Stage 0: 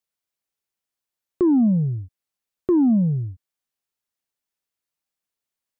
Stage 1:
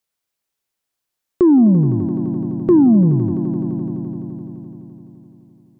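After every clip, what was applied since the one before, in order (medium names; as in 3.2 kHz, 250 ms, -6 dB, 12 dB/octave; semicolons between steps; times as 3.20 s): echo with a slow build-up 85 ms, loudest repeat 5, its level -16 dB; trim +6 dB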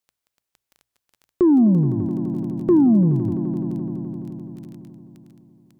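crackle 13 per s -32 dBFS; hum notches 60/120 Hz; trim -3.5 dB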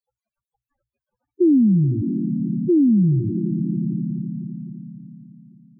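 peak limiter -19 dBFS, peak gain reduction 10 dB; loudest bins only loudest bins 4; trim +8 dB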